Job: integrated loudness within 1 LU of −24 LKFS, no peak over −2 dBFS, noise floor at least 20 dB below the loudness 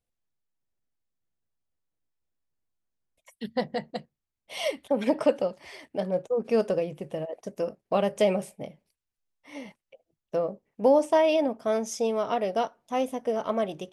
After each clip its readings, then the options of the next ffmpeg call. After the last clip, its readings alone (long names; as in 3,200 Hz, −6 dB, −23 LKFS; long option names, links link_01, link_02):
integrated loudness −27.5 LKFS; sample peak −10.0 dBFS; target loudness −24.0 LKFS
→ -af "volume=3.5dB"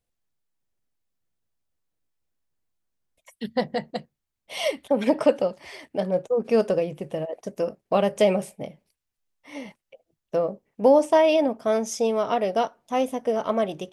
integrated loudness −24.0 LKFS; sample peak −6.5 dBFS; background noise floor −83 dBFS